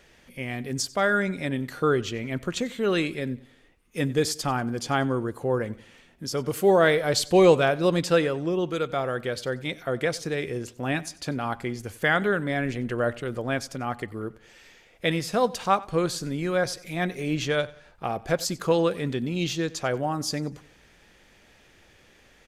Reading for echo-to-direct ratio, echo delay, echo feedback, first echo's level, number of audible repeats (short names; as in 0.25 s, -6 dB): -20.5 dB, 93 ms, 39%, -21.0 dB, 2